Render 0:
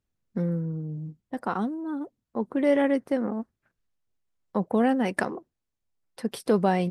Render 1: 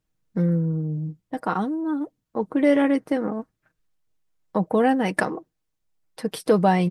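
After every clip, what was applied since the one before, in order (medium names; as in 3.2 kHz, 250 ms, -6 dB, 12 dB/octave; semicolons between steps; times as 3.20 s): comb 6.4 ms, depth 45%; trim +3.5 dB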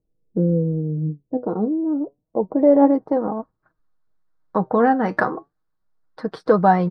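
low-pass sweep 460 Hz -> 1.4 kHz, 1.68–4.05 s; flange 0.3 Hz, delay 1.1 ms, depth 8.2 ms, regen +72%; resonant high shelf 3.4 kHz +7.5 dB, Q 3; trim +6 dB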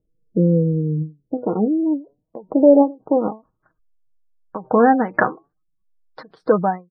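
fade out at the end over 0.54 s; spectral gate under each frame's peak -30 dB strong; endings held to a fixed fall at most 230 dB/s; trim +3 dB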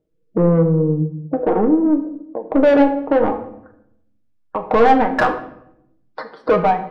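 overdrive pedal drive 23 dB, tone 1.4 kHz, clips at -1 dBFS; simulated room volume 190 m³, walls mixed, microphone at 0.46 m; trim -4.5 dB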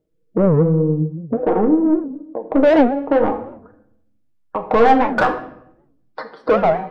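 warped record 78 rpm, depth 250 cents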